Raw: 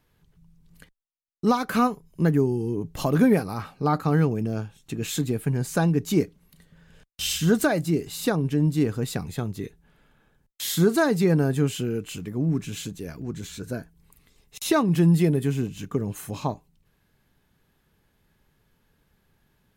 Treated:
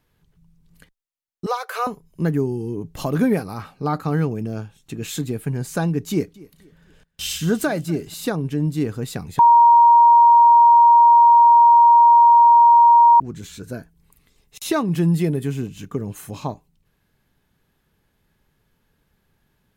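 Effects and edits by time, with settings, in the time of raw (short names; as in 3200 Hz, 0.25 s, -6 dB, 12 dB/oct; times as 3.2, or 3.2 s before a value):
1.46–1.87 elliptic high-pass 460 Hz, stop band 50 dB
6.1–8.14 feedback echo 0.241 s, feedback 37%, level -22 dB
9.39–13.2 bleep 941 Hz -7.5 dBFS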